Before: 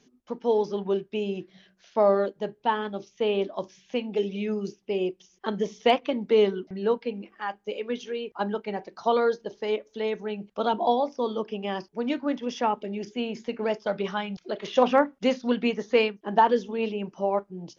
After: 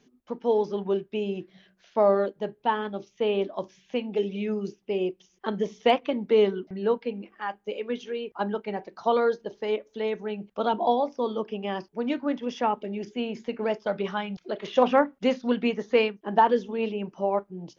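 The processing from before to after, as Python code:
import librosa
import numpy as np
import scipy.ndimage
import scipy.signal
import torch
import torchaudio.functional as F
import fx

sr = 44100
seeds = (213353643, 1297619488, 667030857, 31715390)

y = fx.peak_eq(x, sr, hz=5700.0, db=-5.0, octaves=1.2)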